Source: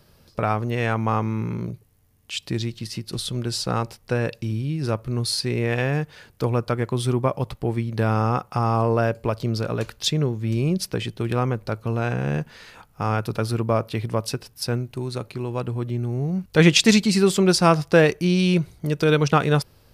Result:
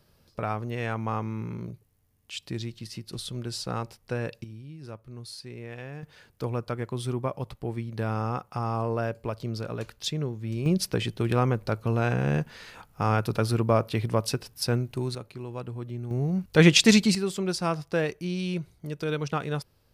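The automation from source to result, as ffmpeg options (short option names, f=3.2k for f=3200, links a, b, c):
-af "asetnsamples=n=441:p=0,asendcmd='4.44 volume volume -17dB;6.03 volume volume -8dB;10.66 volume volume -1dB;15.15 volume volume -9dB;16.11 volume volume -2dB;17.15 volume volume -11dB',volume=-7.5dB"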